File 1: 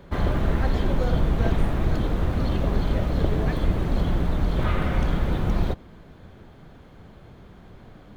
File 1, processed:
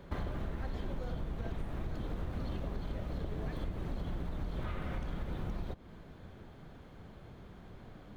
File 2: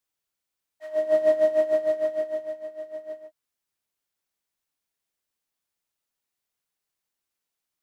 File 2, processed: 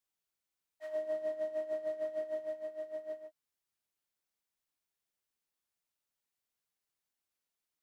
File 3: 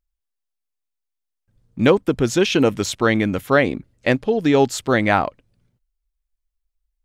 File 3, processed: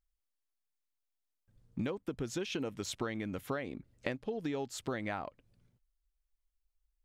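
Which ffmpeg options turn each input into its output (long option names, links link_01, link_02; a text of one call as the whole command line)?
ffmpeg -i in.wav -af "acompressor=threshold=-28dB:ratio=16,volume=-5dB" out.wav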